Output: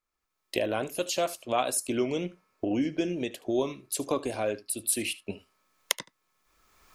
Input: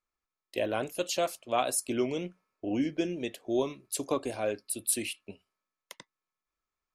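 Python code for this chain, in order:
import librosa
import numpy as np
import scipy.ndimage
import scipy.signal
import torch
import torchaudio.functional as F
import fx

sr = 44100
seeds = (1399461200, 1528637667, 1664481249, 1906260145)

p1 = fx.recorder_agc(x, sr, target_db=-22.0, rise_db_per_s=24.0, max_gain_db=30)
p2 = p1 + fx.echo_single(p1, sr, ms=75, db=-19.0, dry=0)
y = p2 * librosa.db_to_amplitude(1.0)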